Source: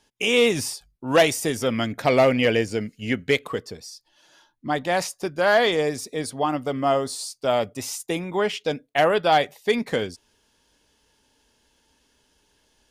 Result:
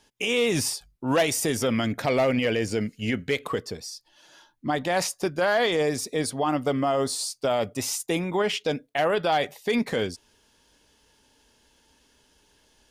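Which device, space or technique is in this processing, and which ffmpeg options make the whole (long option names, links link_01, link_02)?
clipper into limiter: -af "asoftclip=type=hard:threshold=-10dB,alimiter=limit=-18dB:level=0:latency=1:release=42,volume=2.5dB"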